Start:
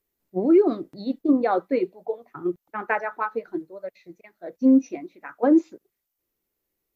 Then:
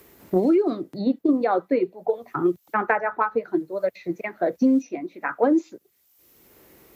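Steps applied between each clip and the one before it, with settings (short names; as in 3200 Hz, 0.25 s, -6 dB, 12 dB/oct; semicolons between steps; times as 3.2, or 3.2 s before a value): HPF 70 Hz; three-band squash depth 100%; gain +1.5 dB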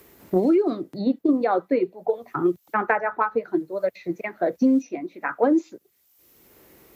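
nothing audible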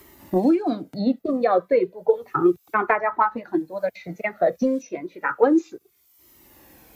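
cascading flanger falling 0.32 Hz; gain +7 dB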